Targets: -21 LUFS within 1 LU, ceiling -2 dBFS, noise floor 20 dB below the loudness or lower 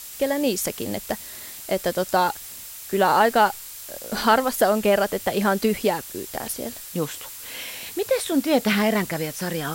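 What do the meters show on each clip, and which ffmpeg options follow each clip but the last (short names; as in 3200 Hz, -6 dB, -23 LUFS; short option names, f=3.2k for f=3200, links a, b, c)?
steady tone 7600 Hz; tone level -49 dBFS; noise floor -39 dBFS; noise floor target -43 dBFS; loudness -23.0 LUFS; peak -5.5 dBFS; loudness target -21.0 LUFS
-> -af "bandreject=f=7.6k:w=30"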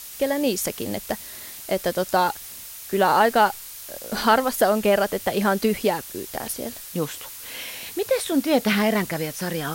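steady tone none; noise floor -39 dBFS; noise floor target -43 dBFS
-> -af "afftdn=nr=6:nf=-39"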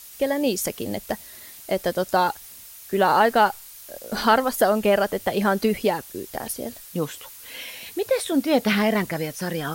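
noise floor -43 dBFS; loudness -23.0 LUFS; peak -5.5 dBFS; loudness target -21.0 LUFS
-> -af "volume=2dB"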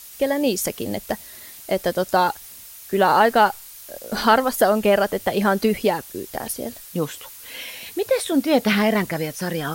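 loudness -21.0 LUFS; peak -3.5 dBFS; noise floor -41 dBFS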